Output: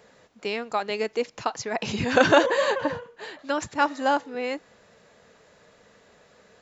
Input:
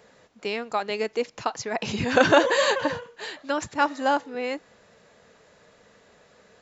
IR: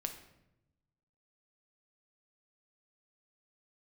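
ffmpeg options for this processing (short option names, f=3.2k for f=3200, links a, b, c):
-filter_complex "[0:a]asettb=1/sr,asplit=3[a][b][c];[a]atrim=end=2.464[d];[b]atrim=start=2.46:end=3.39,asetpts=PTS-STARTPTS,afade=t=in:d=0.004:c=qsin,afade=t=out:st=0.926:d=0.004:c=qsin,highshelf=f=2.4k:g=-9[e];[c]atrim=start=3.386[f];[d][e]acrossfade=d=0.004:c1=hsin:c2=qsin[g];[g][f]acrossfade=d=0.004:c1=qsin:c2=hsin"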